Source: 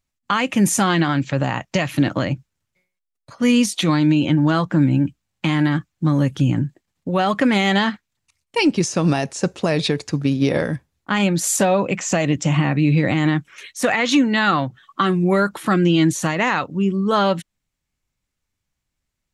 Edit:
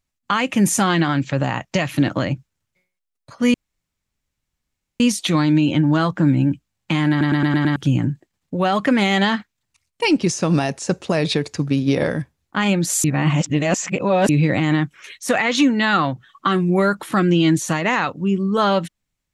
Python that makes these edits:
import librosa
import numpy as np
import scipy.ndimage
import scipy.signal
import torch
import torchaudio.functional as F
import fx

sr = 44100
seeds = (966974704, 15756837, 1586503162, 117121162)

y = fx.edit(x, sr, fx.insert_room_tone(at_s=3.54, length_s=1.46),
    fx.stutter_over(start_s=5.64, slice_s=0.11, count=6),
    fx.reverse_span(start_s=11.58, length_s=1.25), tone=tone)